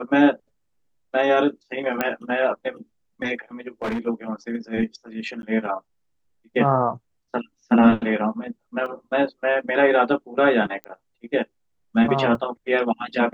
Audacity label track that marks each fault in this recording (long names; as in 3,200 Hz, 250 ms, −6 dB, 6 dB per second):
2.010000	2.010000	click −8 dBFS
3.820000	4.070000	clipping −22.5 dBFS
5.420000	5.430000	drop-out 11 ms
8.860000	8.860000	drop-out 2.9 ms
10.840000	10.840000	click −21 dBFS
12.350000	12.350000	drop-out 2.4 ms